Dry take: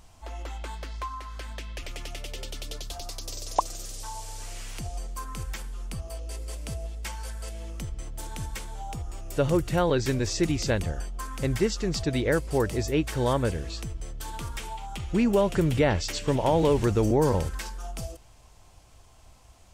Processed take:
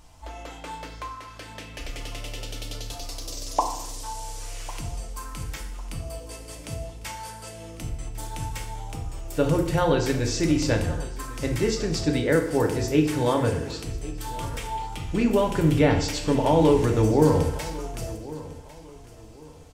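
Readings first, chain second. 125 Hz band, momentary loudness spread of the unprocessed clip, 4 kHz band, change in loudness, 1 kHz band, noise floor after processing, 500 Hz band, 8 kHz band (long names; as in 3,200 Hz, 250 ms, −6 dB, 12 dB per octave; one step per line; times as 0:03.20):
+2.5 dB, 15 LU, +2.0 dB, +3.5 dB, +3.0 dB, −45 dBFS, +2.5 dB, +2.0 dB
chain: on a send: repeating echo 1,101 ms, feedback 30%, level −18 dB
on the sum: feedback delay network reverb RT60 0.78 s, low-frequency decay 1×, high-frequency decay 0.8×, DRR 2 dB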